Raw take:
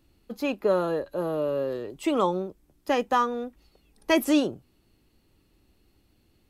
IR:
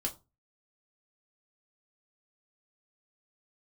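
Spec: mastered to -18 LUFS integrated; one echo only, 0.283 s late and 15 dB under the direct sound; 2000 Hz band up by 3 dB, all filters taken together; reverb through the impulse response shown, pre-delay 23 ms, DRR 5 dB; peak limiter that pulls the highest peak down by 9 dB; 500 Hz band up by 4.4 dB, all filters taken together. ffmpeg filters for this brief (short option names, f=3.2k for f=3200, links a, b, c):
-filter_complex "[0:a]equalizer=f=500:t=o:g=5,equalizer=f=2k:t=o:g=3.5,alimiter=limit=-17.5dB:level=0:latency=1,aecho=1:1:283:0.178,asplit=2[a][b];[1:a]atrim=start_sample=2205,adelay=23[c];[b][c]afir=irnorm=-1:irlink=0,volume=-7dB[d];[a][d]amix=inputs=2:normalize=0,volume=7.5dB"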